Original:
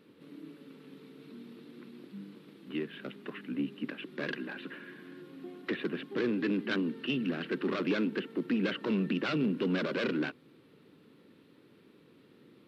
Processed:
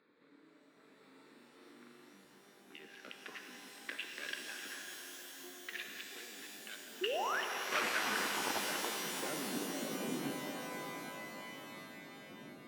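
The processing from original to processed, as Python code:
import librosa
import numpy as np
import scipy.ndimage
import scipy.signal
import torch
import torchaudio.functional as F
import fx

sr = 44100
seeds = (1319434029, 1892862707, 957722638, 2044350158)

p1 = fx.wiener(x, sr, points=15)
p2 = fx.over_compress(p1, sr, threshold_db=-38.0, ratio=-1.0)
p3 = fx.quant_companded(p2, sr, bits=2, at=(7.72, 8.58))
p4 = fx.filter_sweep_bandpass(p3, sr, from_hz=3000.0, to_hz=200.0, start_s=7.3, end_s=10.26, q=1.1)
p5 = fx.tremolo_shape(p4, sr, shape='saw_down', hz=1.3, depth_pct=50)
p6 = fx.room_flutter(p5, sr, wall_m=7.1, rt60_s=1.3, at=(0.95, 2.25))
p7 = fx.spec_paint(p6, sr, seeds[0], shape='rise', start_s=7.01, length_s=0.4, low_hz=340.0, high_hz=1900.0, level_db=-39.0)
p8 = p7 + fx.echo_feedback(p7, sr, ms=703, feedback_pct=58, wet_db=-19.0, dry=0)
p9 = fx.rev_shimmer(p8, sr, seeds[1], rt60_s=4.0, semitones=12, shimmer_db=-2, drr_db=2.5)
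y = p9 * librosa.db_to_amplitude(2.0)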